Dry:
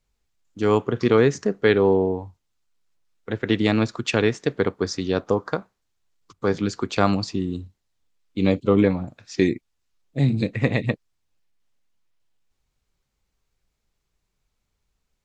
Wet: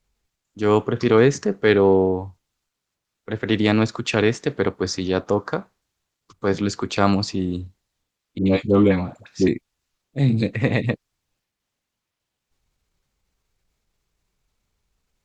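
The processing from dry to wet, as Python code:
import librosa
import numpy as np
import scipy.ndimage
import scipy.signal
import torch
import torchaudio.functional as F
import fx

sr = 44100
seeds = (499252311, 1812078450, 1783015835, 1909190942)

y = fx.transient(x, sr, attack_db=-3, sustain_db=2)
y = fx.dispersion(y, sr, late='highs', ms=80.0, hz=660.0, at=(8.38, 9.48))
y = fx.cheby_harmonics(y, sr, harmonics=(6,), levels_db=(-40,), full_scale_db=-3.5)
y = y * 10.0 ** (2.5 / 20.0)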